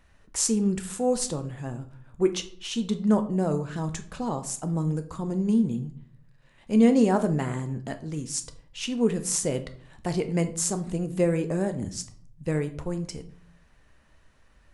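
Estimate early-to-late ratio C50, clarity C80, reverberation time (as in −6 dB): 14.0 dB, 18.0 dB, 0.50 s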